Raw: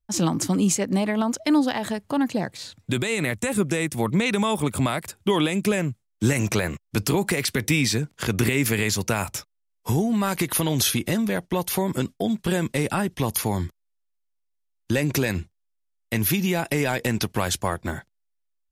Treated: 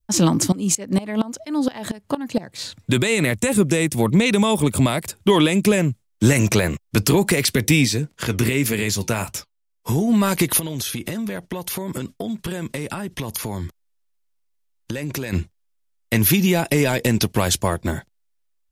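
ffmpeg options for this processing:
ffmpeg -i in.wav -filter_complex "[0:a]asettb=1/sr,asplit=3[link_01][link_02][link_03];[link_01]atrim=end=0.524[link_04];[link_02]atrim=start=0.52:end=2.58,asetpts=PTS-STARTPTS,afade=type=in:duration=0.004:curve=qsin,afade=type=out:start_time=2.056:duration=0.004:curve=qsin,aeval=exprs='val(0)*pow(10,-20*if(lt(mod(-4.3*n/s,1),2*abs(-4.3)/1000),1-mod(-4.3*n/s,1)/(2*abs(-4.3)/1000),(mod(-4.3*n/s,1)-2*abs(-4.3)/1000)/(1-2*abs(-4.3)/1000))/20)':channel_layout=same[link_05];[link_03]atrim=start=2.576[link_06];[link_04][link_05]acrossfade=duration=0.004:curve1=hsin:curve2=qsin[link_07];[link_07][link_06]acrossfade=duration=0.004:curve1=qsin:curve2=hsin,asplit=3[link_08][link_09][link_10];[link_08]afade=type=out:start_time=7.84:duration=0.02[link_11];[link_09]flanger=delay=3.9:depth=5.8:regen=-68:speed=1.6:shape=triangular,afade=type=in:start_time=7.84:duration=0.02,afade=type=out:start_time=10.07:duration=0.02[link_12];[link_10]afade=type=in:start_time=10.07:duration=0.02[link_13];[link_11][link_12][link_13]amix=inputs=3:normalize=0,asettb=1/sr,asplit=3[link_14][link_15][link_16];[link_14]atrim=end=10.594[link_17];[link_15]atrim=start=10.59:end=15.33,asetpts=PTS-STARTPTS,afade=type=in:duration=0.004:curve=qsin,afade=type=out:start_time=4.736:duration=0.004:curve=qsin,acompressor=threshold=-30dB:ratio=6:attack=3.2:release=140:knee=1:detection=peak[link_18];[link_16]atrim=start=15.326[link_19];[link_17][link_18]acrossfade=duration=0.004:curve1=hsin:curve2=qsin[link_20];[link_20][link_19]acrossfade=duration=0.004:curve1=qsin:curve2=hsin,bandreject=frequency=770:width=14,adynamicequalizer=threshold=0.00794:dfrequency=1400:dqfactor=1:tfrequency=1400:tqfactor=1:attack=5:release=100:ratio=0.375:range=3:mode=cutabove:tftype=bell,acontrast=64" out.wav

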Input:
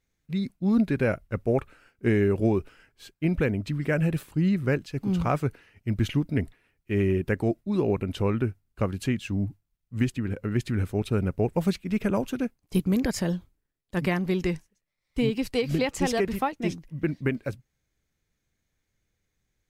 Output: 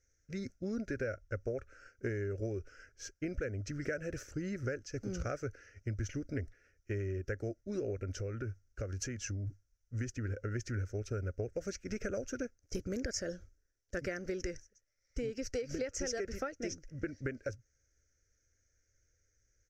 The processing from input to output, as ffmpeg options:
ffmpeg -i in.wav -filter_complex "[0:a]asettb=1/sr,asplit=3[link_01][link_02][link_03];[link_01]atrim=end=8.194[link_04];[link_02]atrim=start=8.19:end=9.47,asetpts=PTS-STARTPTS,afade=type=in:duration=0.004:curve=qsin,afade=type=out:start_time=1.276:duration=0.004:curve=qsin,acompressor=threshold=-33dB:ratio=2.5:attack=3.2:release=140:knee=1:detection=peak[link_05];[link_03]atrim=start=9.466[link_06];[link_04][link_05]acrossfade=duration=0.004:curve1=hsin:curve2=qsin[link_07];[link_07][link_06]acrossfade=duration=0.004:curve1=qsin:curve2=hsin,firequalizer=gain_entry='entry(100,0);entry(160,-18);entry(250,-9);entry(550,1);entry(960,-29);entry(1400,2);entry(2600,-11);entry(3700,-18);entry(5800,11);entry(9000,-17)':delay=0.05:min_phase=1,acompressor=threshold=-37dB:ratio=6,volume=2.5dB" out.wav

